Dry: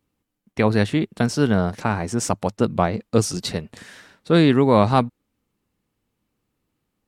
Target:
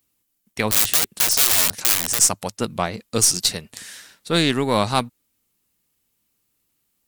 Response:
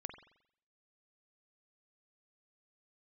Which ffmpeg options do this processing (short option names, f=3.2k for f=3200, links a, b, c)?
-filter_complex "[0:a]asettb=1/sr,asplit=3[a][b][c];[a]atrim=end=0.714[d];[b]atrim=start=0.71:end=2.19,asetpts=PTS-STARTPTS,afade=t=in:d=0.004:c=qsin,afade=t=out:st=1.476:d=0.004:c=qsin,aeval=exprs='(mod(10.6*val(0)+1,2)-1)/10.6':c=same[e];[c]atrim=start=2.186[f];[d][e]acrossfade=d=0.004:c1=hsin:c2=qsin[g];[g][f]acrossfade=d=0.004:c1=qsin:c2=hsin,crystalizer=i=7.5:c=0,aeval=exprs='1.58*(cos(1*acos(clip(val(0)/1.58,-1,1)))-cos(1*PI/2))+0.0562*(cos(6*acos(clip(val(0)/1.58,-1,1)))-cos(6*PI/2))+0.0355*(cos(7*acos(clip(val(0)/1.58,-1,1)))-cos(7*PI/2))':c=same,volume=-5dB"